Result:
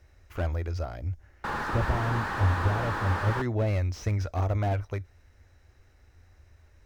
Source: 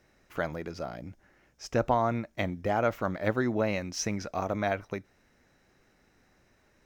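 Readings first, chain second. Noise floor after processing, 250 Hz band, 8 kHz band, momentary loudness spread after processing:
-60 dBFS, -3.0 dB, no reading, 10 LU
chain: painted sound noise, 1.44–3.42 s, 790–1900 Hz -21 dBFS; resonant low shelf 120 Hz +12 dB, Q 3; slew-rate limiter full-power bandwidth 34 Hz

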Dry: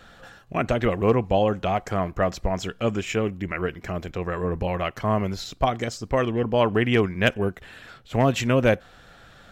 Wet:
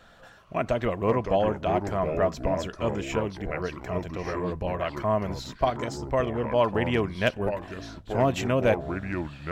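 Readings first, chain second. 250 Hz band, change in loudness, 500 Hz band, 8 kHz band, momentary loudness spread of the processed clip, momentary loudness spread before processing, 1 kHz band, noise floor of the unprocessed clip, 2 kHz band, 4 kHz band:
-4.0 dB, -3.0 dB, -2.0 dB, -5.0 dB, 9 LU, 9 LU, -2.0 dB, -51 dBFS, -4.5 dB, -5.0 dB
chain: ever faster or slower copies 379 ms, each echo -4 st, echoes 2, each echo -6 dB; small resonant body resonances 640/990 Hz, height 7 dB, ringing for 30 ms; trim -5.5 dB

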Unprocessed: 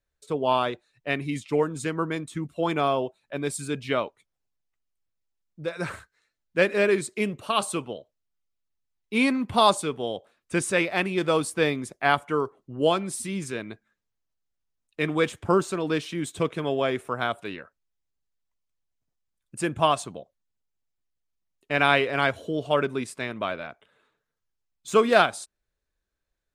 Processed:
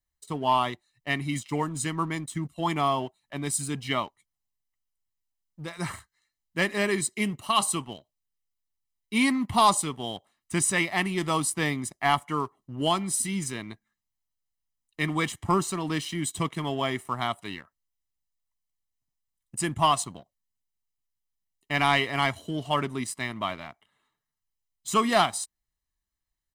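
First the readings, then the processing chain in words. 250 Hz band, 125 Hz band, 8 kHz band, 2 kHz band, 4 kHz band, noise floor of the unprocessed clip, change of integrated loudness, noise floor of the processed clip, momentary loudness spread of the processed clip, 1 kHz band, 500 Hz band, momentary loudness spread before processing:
-1.0 dB, +1.5 dB, +6.5 dB, -2.0 dB, +1.0 dB, -82 dBFS, -1.5 dB, -85 dBFS, 14 LU, +0.5 dB, -7.0 dB, 15 LU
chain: treble shelf 5.1 kHz +9 dB; comb 1 ms, depth 72%; waveshaping leveller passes 1; trim -6 dB

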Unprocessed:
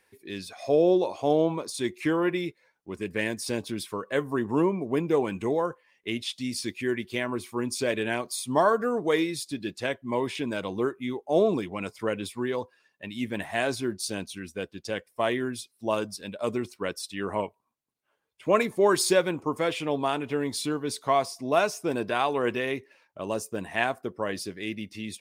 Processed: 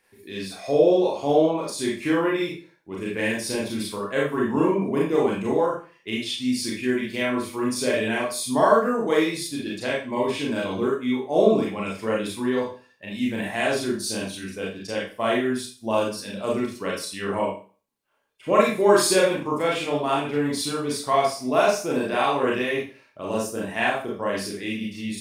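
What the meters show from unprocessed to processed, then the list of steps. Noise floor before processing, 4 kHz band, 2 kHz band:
-73 dBFS, +4.5 dB, +4.0 dB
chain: Schroeder reverb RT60 0.38 s, combs from 28 ms, DRR -4.5 dB; trim -1.5 dB

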